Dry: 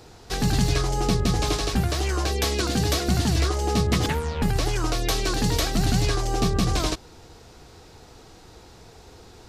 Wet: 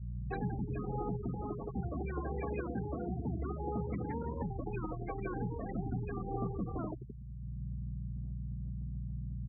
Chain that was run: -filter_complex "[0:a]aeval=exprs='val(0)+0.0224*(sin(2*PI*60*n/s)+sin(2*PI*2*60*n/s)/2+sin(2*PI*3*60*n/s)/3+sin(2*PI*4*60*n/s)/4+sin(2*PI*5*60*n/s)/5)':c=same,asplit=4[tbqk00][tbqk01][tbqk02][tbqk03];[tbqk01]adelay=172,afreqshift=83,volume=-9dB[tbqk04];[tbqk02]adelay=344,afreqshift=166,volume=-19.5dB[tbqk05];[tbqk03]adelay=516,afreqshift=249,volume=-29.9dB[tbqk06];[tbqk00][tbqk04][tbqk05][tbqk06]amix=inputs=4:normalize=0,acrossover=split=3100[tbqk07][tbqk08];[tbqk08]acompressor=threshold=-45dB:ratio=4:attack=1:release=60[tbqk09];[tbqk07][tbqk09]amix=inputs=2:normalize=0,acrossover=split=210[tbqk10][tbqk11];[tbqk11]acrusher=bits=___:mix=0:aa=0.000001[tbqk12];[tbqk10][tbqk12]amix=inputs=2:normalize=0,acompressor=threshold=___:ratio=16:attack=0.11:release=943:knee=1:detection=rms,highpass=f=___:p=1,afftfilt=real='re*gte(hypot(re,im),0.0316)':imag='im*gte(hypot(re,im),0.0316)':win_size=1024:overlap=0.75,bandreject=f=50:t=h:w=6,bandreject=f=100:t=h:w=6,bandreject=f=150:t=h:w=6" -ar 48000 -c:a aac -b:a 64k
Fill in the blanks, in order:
4, -25dB, 91